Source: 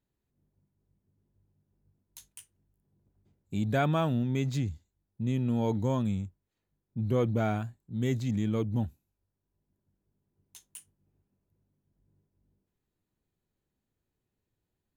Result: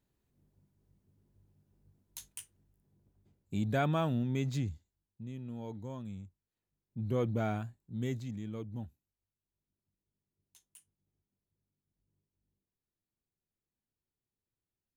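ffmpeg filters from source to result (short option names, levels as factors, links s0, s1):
-af "volume=4.47,afade=t=out:st=2.31:d=1.4:silence=0.446684,afade=t=out:st=4.71:d=0.58:silence=0.298538,afade=t=in:st=6.03:d=1.19:silence=0.334965,afade=t=out:st=7.94:d=0.41:silence=0.446684"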